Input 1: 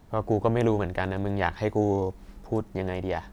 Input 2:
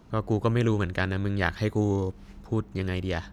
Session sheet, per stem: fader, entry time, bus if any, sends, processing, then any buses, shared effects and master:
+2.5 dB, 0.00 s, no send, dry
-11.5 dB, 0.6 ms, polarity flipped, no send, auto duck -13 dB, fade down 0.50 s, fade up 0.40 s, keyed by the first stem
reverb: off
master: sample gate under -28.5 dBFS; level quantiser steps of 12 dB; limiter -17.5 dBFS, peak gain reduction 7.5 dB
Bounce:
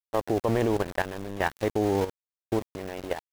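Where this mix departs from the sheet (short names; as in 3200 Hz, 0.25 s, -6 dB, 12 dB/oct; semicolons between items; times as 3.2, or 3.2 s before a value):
stem 2 -11.5 dB -> -0.5 dB; master: missing limiter -17.5 dBFS, peak gain reduction 7.5 dB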